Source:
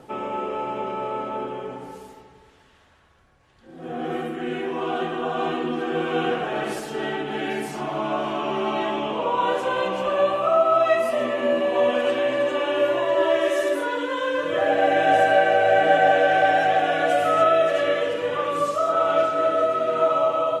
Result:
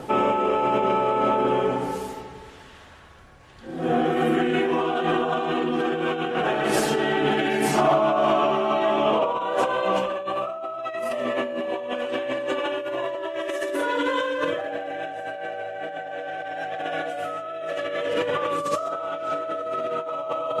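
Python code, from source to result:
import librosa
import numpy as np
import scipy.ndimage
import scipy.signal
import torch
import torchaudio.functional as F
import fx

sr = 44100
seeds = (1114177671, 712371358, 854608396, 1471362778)

y = fx.over_compress(x, sr, threshold_db=-30.0, ratio=-1.0)
y = fx.small_body(y, sr, hz=(660.0, 1200.0), ring_ms=20, db=8, at=(7.77, 9.97))
y = F.gain(torch.from_numpy(y), 3.5).numpy()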